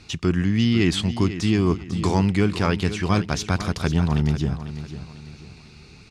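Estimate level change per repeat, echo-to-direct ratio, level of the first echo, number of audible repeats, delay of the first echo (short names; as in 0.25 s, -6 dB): -8.5 dB, -11.5 dB, -12.0 dB, 3, 0.497 s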